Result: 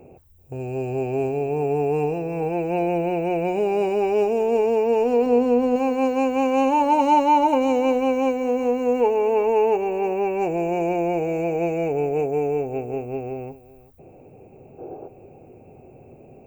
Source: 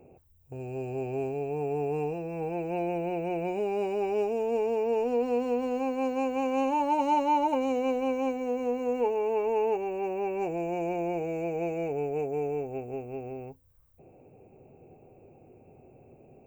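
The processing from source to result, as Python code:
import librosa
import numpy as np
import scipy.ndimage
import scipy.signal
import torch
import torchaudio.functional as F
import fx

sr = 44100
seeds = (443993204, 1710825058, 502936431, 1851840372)

p1 = fx.tilt_shelf(x, sr, db=4.0, hz=770.0, at=(5.26, 5.76))
p2 = fx.spec_box(p1, sr, start_s=14.79, length_s=0.29, low_hz=270.0, high_hz=1700.0, gain_db=11)
p3 = p2 + fx.echo_single(p2, sr, ms=384, db=-18.5, dry=0)
y = p3 * librosa.db_to_amplitude(8.0)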